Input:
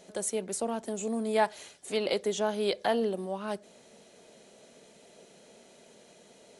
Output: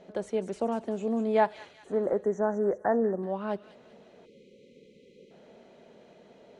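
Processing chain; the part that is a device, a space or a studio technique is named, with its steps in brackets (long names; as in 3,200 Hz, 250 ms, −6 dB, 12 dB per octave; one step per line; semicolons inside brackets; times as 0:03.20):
0:01.73–0:03.23: Chebyshev band-stop filter 1,900–5,900 Hz, order 5
phone in a pocket (low-pass filter 3,900 Hz 12 dB per octave; high-shelf EQ 2,200 Hz −11 dB)
delay with a high-pass on its return 193 ms, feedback 44%, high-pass 2,700 Hz, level −7 dB
0:04.25–0:05.31: time-frequency box erased 580–2,000 Hz
level +3.5 dB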